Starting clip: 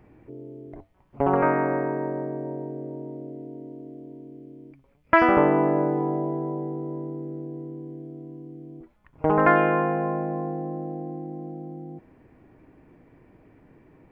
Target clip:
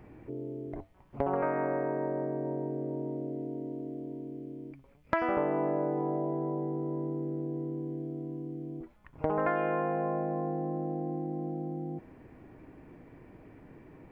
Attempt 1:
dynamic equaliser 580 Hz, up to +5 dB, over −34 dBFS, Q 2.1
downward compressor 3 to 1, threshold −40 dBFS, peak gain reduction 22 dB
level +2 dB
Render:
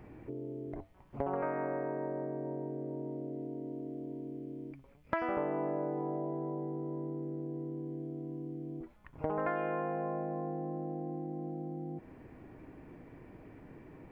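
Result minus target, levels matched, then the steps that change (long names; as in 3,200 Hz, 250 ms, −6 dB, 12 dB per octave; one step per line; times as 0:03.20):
downward compressor: peak gain reduction +4.5 dB
change: downward compressor 3 to 1, threshold −33 dBFS, peak gain reduction 17 dB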